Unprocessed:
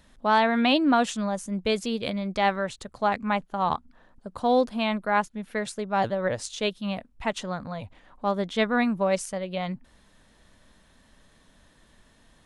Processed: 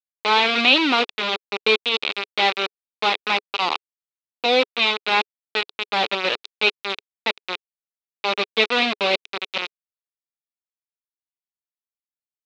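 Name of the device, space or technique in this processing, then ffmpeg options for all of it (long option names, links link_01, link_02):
hand-held game console: -af "acrusher=bits=3:mix=0:aa=0.000001,highpass=410,equalizer=frequency=420:width_type=q:width=4:gain=4,equalizer=frequency=650:width_type=q:width=4:gain=-8,equalizer=frequency=980:width_type=q:width=4:gain=-4,equalizer=frequency=1700:width_type=q:width=4:gain=-7,equalizer=frequency=2500:width_type=q:width=4:gain=8,equalizer=frequency=3800:width_type=q:width=4:gain=8,lowpass=frequency=4200:width=0.5412,lowpass=frequency=4200:width=1.3066,volume=5dB"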